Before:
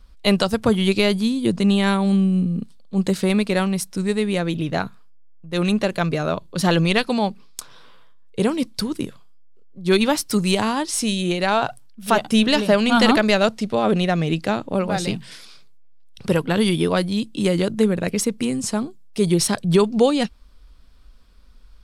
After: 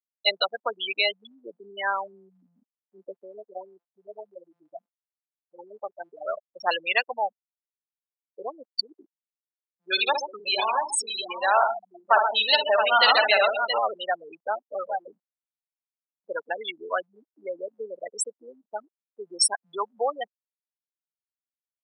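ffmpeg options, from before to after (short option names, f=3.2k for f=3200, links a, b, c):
-filter_complex "[0:a]asplit=3[a][b][c];[a]afade=t=out:st=3.2:d=0.02[d];[b]aeval=exprs='max(val(0),0)':c=same,afade=t=in:st=3.2:d=0.02,afade=t=out:st=6.2:d=0.02[e];[c]afade=t=in:st=6.2:d=0.02[f];[d][e][f]amix=inputs=3:normalize=0,asettb=1/sr,asplit=3[g][h][i];[g]atrim=end=9.854[j];[h]atrim=start=9.85:end=13.79,asetpts=PTS-STARTPTS,afade=t=in:d=0.004:c=qsin,afade=t=out:st=3.936:d=0.004:c=qsin,aecho=1:1:56|131|200|370|671:0.562|0.422|0.168|0.15|0.501,atrim=end_sample=173754[k];[i]atrim=start=13.786[l];[j][k]acrossfade=d=0.004:c1=hsin:c2=qsin[m];[m][l]acrossfade=d=0.004:c1=qsin:c2=hsin,afftfilt=real='re*gte(hypot(re,im),0.224)':imag='im*gte(hypot(re,im),0.224)':win_size=1024:overlap=0.75,highpass=f=670:w=0.5412,highpass=f=670:w=1.3066,highshelf=f=4.7k:g=10"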